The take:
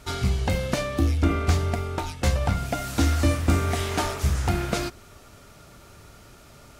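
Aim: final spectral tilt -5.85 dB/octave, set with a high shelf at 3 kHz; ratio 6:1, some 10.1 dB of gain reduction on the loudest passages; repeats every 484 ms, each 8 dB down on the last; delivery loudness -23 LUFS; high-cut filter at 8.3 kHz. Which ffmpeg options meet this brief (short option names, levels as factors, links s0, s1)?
-af "lowpass=8300,highshelf=f=3000:g=-3.5,acompressor=threshold=0.0447:ratio=6,aecho=1:1:484|968|1452|1936|2420:0.398|0.159|0.0637|0.0255|0.0102,volume=2.82"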